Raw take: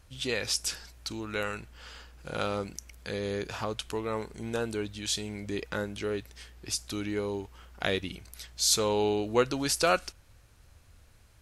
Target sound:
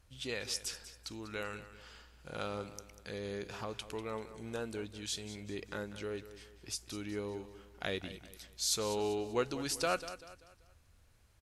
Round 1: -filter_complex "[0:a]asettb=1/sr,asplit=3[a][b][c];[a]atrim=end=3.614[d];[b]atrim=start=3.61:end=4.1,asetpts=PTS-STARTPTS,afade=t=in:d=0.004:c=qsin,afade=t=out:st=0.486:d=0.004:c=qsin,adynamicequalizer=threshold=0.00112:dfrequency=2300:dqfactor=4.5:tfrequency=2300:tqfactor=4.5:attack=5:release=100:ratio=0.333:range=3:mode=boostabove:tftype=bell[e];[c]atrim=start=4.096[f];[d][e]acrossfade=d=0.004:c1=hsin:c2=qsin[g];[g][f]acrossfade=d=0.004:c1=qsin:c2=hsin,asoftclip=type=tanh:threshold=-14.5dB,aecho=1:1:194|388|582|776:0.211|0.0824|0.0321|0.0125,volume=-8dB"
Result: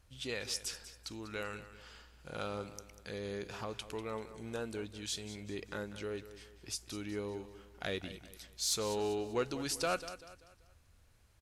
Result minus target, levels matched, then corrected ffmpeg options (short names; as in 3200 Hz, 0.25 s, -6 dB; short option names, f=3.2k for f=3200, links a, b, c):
soft clip: distortion +18 dB
-filter_complex "[0:a]asettb=1/sr,asplit=3[a][b][c];[a]atrim=end=3.614[d];[b]atrim=start=3.61:end=4.1,asetpts=PTS-STARTPTS,afade=t=in:d=0.004:c=qsin,afade=t=out:st=0.486:d=0.004:c=qsin,adynamicequalizer=threshold=0.00112:dfrequency=2300:dqfactor=4.5:tfrequency=2300:tqfactor=4.5:attack=5:release=100:ratio=0.333:range=3:mode=boostabove:tftype=bell[e];[c]atrim=start=4.096[f];[d][e]acrossfade=d=0.004:c1=hsin:c2=qsin[g];[g][f]acrossfade=d=0.004:c1=qsin:c2=hsin,asoftclip=type=tanh:threshold=-4dB,aecho=1:1:194|388|582|776:0.211|0.0824|0.0321|0.0125,volume=-8dB"